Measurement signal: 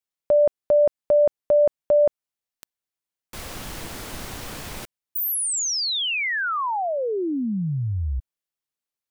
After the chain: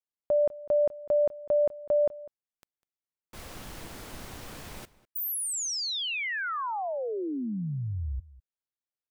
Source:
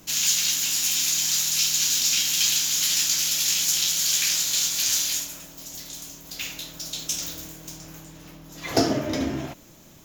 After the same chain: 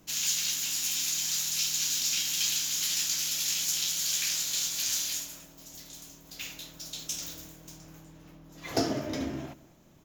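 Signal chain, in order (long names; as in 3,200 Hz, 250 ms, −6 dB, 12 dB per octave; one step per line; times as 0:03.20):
single-tap delay 200 ms −19.5 dB
one half of a high-frequency compander decoder only
level −7 dB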